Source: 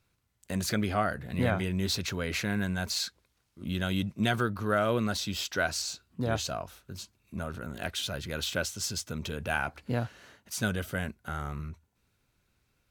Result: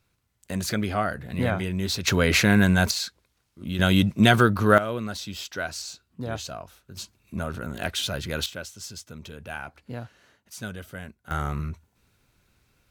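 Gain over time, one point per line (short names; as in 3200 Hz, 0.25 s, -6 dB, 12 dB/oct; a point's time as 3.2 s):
+2.5 dB
from 2.07 s +12 dB
from 2.91 s +2.5 dB
from 3.79 s +10.5 dB
from 4.78 s -2 dB
from 6.97 s +5.5 dB
from 8.46 s -5.5 dB
from 11.31 s +7.5 dB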